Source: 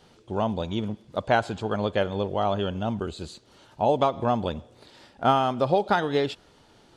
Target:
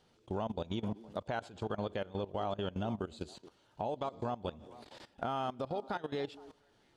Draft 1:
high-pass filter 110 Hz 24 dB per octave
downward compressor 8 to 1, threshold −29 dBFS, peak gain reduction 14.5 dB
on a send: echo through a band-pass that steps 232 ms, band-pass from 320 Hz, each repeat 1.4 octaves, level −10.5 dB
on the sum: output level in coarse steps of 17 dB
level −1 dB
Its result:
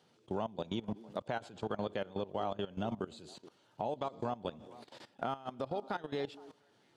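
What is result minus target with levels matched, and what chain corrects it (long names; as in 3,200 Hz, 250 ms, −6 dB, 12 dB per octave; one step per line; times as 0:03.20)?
125 Hz band −2.5 dB
downward compressor 8 to 1, threshold −29 dBFS, peak gain reduction 14 dB
on a send: echo through a band-pass that steps 232 ms, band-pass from 320 Hz, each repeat 1.4 octaves, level −10.5 dB
on the sum: output level in coarse steps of 17 dB
level −1 dB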